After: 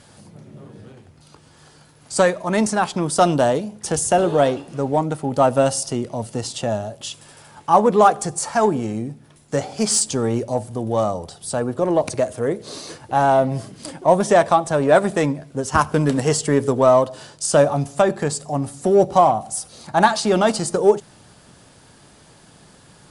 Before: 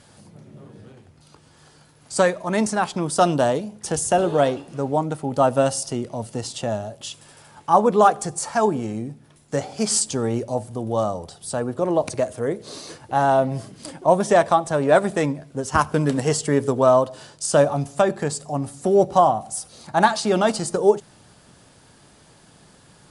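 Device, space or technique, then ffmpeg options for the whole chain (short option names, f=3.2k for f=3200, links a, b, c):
parallel distortion: -filter_complex "[0:a]asplit=2[a][b];[b]asoftclip=type=hard:threshold=-19dB,volume=-13dB[c];[a][c]amix=inputs=2:normalize=0,volume=1dB"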